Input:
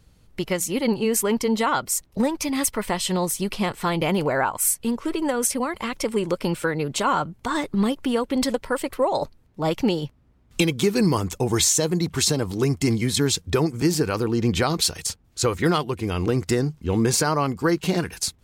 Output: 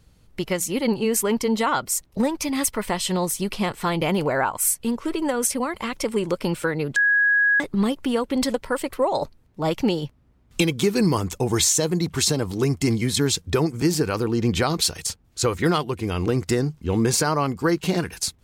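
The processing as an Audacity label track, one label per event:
6.960000	7.600000	bleep 1660 Hz -15 dBFS

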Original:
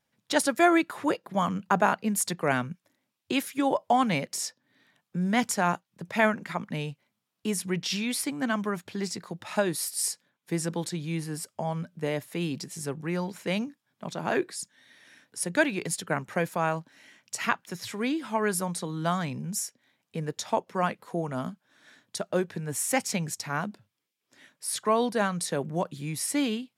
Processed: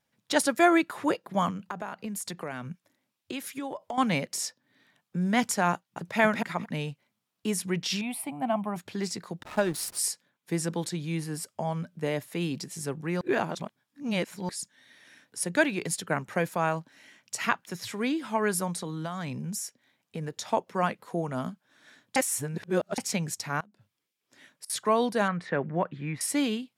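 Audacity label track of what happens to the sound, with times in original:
1.500000	3.980000	compressor, threshold -32 dBFS
5.730000	6.190000	echo throw 0.23 s, feedback 15%, level -0.5 dB
8.010000	8.760000	EQ curve 180 Hz 0 dB, 490 Hz -11 dB, 720 Hz +11 dB, 1100 Hz -2 dB, 1600 Hz -14 dB, 2600 Hz -2 dB, 4400 Hz -17 dB, 6400 Hz -23 dB, 9200 Hz -4 dB
9.430000	9.990000	backlash play -32.5 dBFS
13.210000	14.490000	reverse
18.730000	20.420000	compressor, threshold -30 dBFS
22.160000	22.980000	reverse
23.600000	24.700000	flipped gate shuts at -28 dBFS, range -24 dB
25.280000	26.210000	synth low-pass 1900 Hz, resonance Q 2.4

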